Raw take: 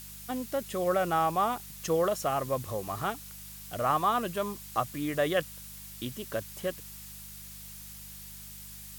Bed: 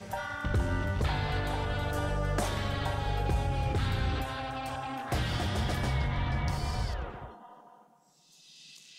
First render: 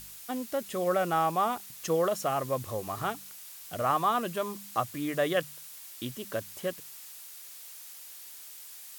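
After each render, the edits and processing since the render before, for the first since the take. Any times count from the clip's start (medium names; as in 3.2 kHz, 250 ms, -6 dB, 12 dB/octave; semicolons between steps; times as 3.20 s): de-hum 50 Hz, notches 4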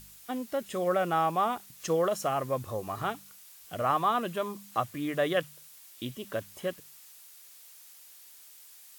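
noise print and reduce 6 dB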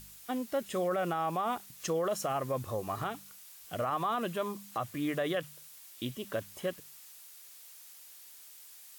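peak limiter -23.5 dBFS, peak gain reduction 9 dB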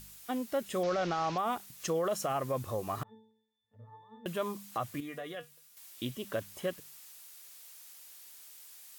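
0.83–1.38 s: one-bit delta coder 32 kbps, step -36 dBFS; 3.03–4.26 s: pitch-class resonator A, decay 0.65 s; 5.00–5.77 s: feedback comb 240 Hz, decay 0.15 s, mix 80%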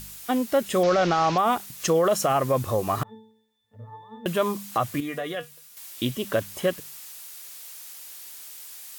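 trim +10.5 dB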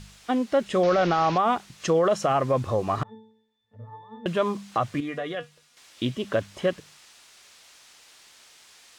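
distance through air 100 m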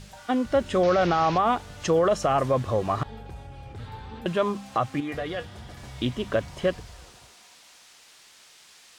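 add bed -12 dB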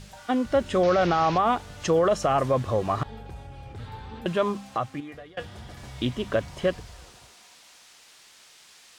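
4.52–5.37 s: fade out linear, to -22.5 dB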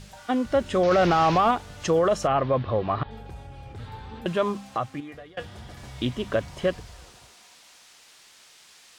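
0.91–1.51 s: waveshaping leveller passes 1; 2.27–3.11 s: steep low-pass 4.2 kHz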